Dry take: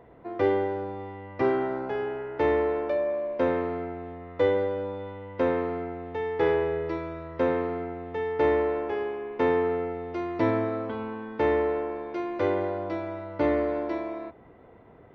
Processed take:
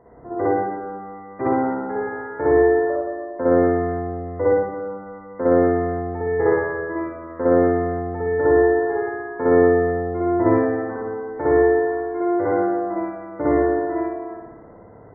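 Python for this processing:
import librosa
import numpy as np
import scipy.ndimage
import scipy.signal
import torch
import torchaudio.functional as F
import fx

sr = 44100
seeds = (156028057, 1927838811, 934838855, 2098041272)

y = scipy.signal.savgol_filter(x, 41, 4, mode='constant')
y = fx.spec_gate(y, sr, threshold_db=-30, keep='strong')
y = fx.rev_spring(y, sr, rt60_s=1.1, pass_ms=(57,), chirp_ms=35, drr_db=-7.5)
y = y * 10.0 ** (-1.0 / 20.0)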